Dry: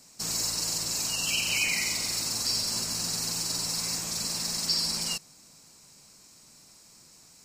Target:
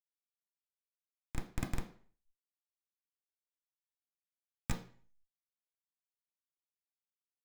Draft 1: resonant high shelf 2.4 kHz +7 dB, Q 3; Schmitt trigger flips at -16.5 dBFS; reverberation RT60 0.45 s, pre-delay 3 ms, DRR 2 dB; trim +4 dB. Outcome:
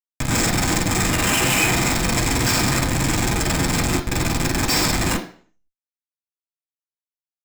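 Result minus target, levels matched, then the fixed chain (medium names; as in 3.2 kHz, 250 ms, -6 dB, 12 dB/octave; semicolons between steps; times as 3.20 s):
4 kHz band +12.0 dB
Schmitt trigger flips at -16.5 dBFS; reverberation RT60 0.45 s, pre-delay 3 ms, DRR 2 dB; trim +4 dB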